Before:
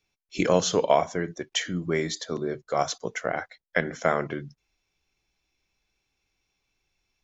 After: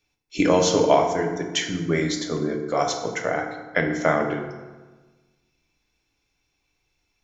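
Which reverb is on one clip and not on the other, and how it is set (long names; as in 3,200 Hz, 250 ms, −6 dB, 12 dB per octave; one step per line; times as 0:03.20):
feedback delay network reverb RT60 1.3 s, low-frequency decay 1.25×, high-frequency decay 0.6×, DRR 2.5 dB
level +2 dB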